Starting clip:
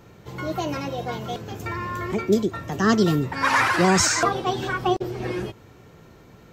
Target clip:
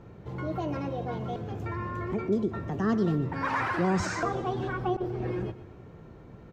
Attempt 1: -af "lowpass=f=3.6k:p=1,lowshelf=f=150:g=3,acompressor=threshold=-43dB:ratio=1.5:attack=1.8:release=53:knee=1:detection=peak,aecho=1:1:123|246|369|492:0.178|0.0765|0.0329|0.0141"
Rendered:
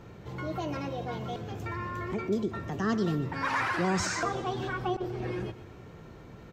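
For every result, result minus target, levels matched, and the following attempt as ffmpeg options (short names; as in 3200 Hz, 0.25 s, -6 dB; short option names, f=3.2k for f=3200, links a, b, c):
4000 Hz band +6.5 dB; compressor: peak gain reduction +3 dB
-af "lowpass=f=1k:p=1,lowshelf=f=150:g=3,acompressor=threshold=-43dB:ratio=1.5:attack=1.8:release=53:knee=1:detection=peak,aecho=1:1:123|246|369|492:0.178|0.0765|0.0329|0.0141"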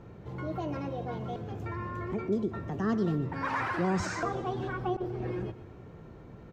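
compressor: peak gain reduction +2.5 dB
-af "lowpass=f=1k:p=1,lowshelf=f=150:g=3,acompressor=threshold=-35dB:ratio=1.5:attack=1.8:release=53:knee=1:detection=peak,aecho=1:1:123|246|369|492:0.178|0.0765|0.0329|0.0141"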